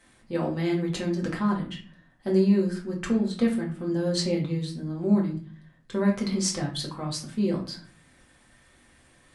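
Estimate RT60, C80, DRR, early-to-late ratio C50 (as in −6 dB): 0.45 s, 13.0 dB, −3.0 dB, 8.0 dB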